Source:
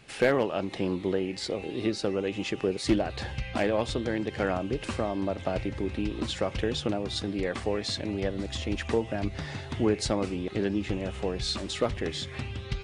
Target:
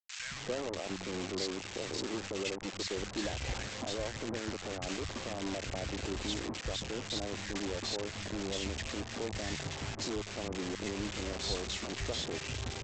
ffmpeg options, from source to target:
ffmpeg -i in.wav -filter_complex "[0:a]alimiter=level_in=2dB:limit=-24dB:level=0:latency=1:release=94,volume=-2dB,aresample=16000,acrusher=bits=5:mix=0:aa=0.000001,aresample=44100,acrossover=split=170|1200[link_01][link_02][link_03];[link_01]adelay=100[link_04];[link_02]adelay=270[link_05];[link_04][link_05][link_03]amix=inputs=3:normalize=0,volume=-1.5dB" out.wav

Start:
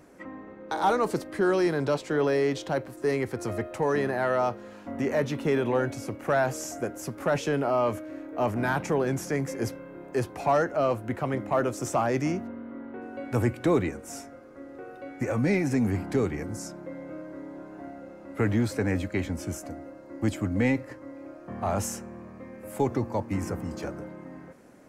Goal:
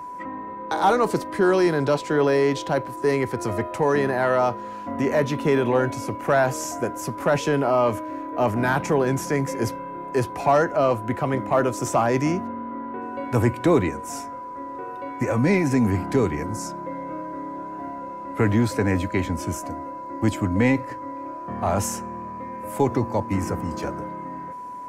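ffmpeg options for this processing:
ffmpeg -i in.wav -af "aeval=exprs='val(0)+0.0126*sin(2*PI*990*n/s)':channel_layout=same,volume=5dB" out.wav

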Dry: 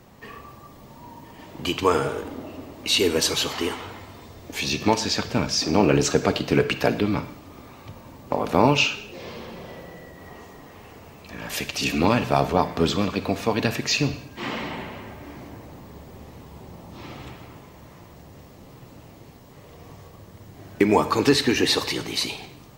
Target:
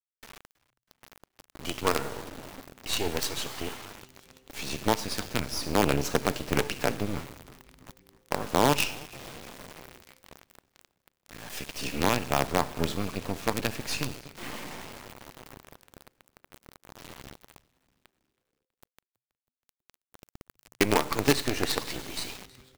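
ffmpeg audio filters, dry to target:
ffmpeg -i in.wav -filter_complex "[0:a]asettb=1/sr,asplit=3[link_01][link_02][link_03];[link_01]atrim=end=20.114[link_04];[link_02]atrim=start=20.11:end=20.54,asetpts=PTS-STARTPTS,afade=type=in:duration=0.004:curve=qsin,afade=type=out:start_time=0.426:duration=0.004:curve=qsin,lowshelf=frequency=180:gain=3[link_05];[link_03]atrim=start=20.536[link_06];[link_04][link_05]acrossfade=duration=0.004:curve1=hsin:curve2=qsin[link_07];[link_07][link_06]acrossfade=duration=0.004:curve1=qsin:curve2=hsin,asplit=2[link_08][link_09];[link_09]adelay=252,lowpass=frequency=1100:poles=1,volume=-21.5dB,asplit=2[link_10][link_11];[link_11]adelay=252,lowpass=frequency=1100:poles=1,volume=0.37,asplit=2[link_12][link_13];[link_13]adelay=252,lowpass=frequency=1100:poles=1,volume=0.37[link_14];[link_10][link_12][link_14]amix=inputs=3:normalize=0[link_15];[link_08][link_15]amix=inputs=2:normalize=0,acrusher=bits=3:dc=4:mix=0:aa=0.000001,asplit=2[link_16][link_17];[link_17]asplit=4[link_18][link_19][link_20][link_21];[link_18]adelay=323,afreqshift=-130,volume=-23.5dB[link_22];[link_19]adelay=646,afreqshift=-260,volume=-27.9dB[link_23];[link_20]adelay=969,afreqshift=-390,volume=-32.4dB[link_24];[link_21]adelay=1292,afreqshift=-520,volume=-36.8dB[link_25];[link_22][link_23][link_24][link_25]amix=inputs=4:normalize=0[link_26];[link_16][link_26]amix=inputs=2:normalize=0,volume=-5.5dB" out.wav

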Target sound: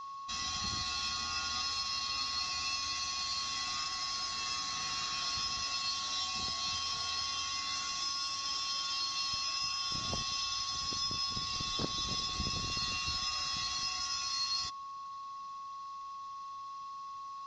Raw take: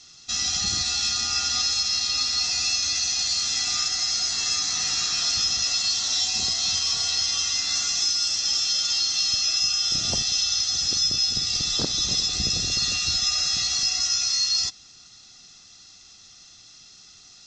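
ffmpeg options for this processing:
ffmpeg -i in.wav -af "lowpass=4000,aeval=exprs='val(0)+0.02*sin(2*PI*1100*n/s)':channel_layout=same,volume=-7.5dB" out.wav

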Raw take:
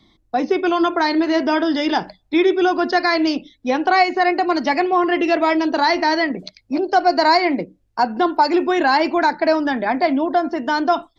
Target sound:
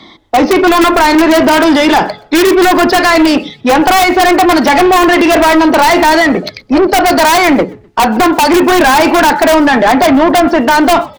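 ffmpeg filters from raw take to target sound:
ffmpeg -i in.wav -filter_complex "[0:a]bandreject=frequency=423.5:width_type=h:width=4,bandreject=frequency=847:width_type=h:width=4,bandreject=frequency=1270.5:width_type=h:width=4,asplit=2[link_01][link_02];[link_02]highpass=frequency=720:poles=1,volume=28dB,asoftclip=type=tanh:threshold=-4dB[link_03];[link_01][link_03]amix=inputs=2:normalize=0,lowpass=frequency=1900:poles=1,volume=-6dB,asplit=2[link_04][link_05];[link_05]aeval=exprs='(mod(2.24*val(0)+1,2)-1)/2.24':channel_layout=same,volume=-3dB[link_06];[link_04][link_06]amix=inputs=2:normalize=0,asplit=3[link_07][link_08][link_09];[link_08]adelay=126,afreqshift=-79,volume=-24dB[link_10];[link_09]adelay=252,afreqshift=-158,volume=-33.4dB[link_11];[link_07][link_10][link_11]amix=inputs=3:normalize=0" out.wav

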